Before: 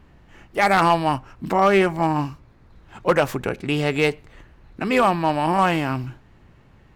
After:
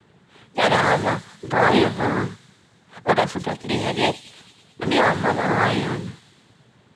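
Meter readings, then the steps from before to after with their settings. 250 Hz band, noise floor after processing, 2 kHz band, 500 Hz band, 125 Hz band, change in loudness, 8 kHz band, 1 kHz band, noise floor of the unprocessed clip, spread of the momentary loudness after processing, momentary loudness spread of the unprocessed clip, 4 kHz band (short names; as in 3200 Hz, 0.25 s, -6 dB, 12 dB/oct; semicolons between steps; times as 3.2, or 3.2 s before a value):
-0.5 dB, -57 dBFS, +2.0 dB, -1.0 dB, 0.0 dB, -0.5 dB, +2.5 dB, -1.5 dB, -52 dBFS, 13 LU, 13 LU, +4.5 dB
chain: noise vocoder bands 6; thin delay 0.11 s, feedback 68%, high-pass 5100 Hz, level -8 dB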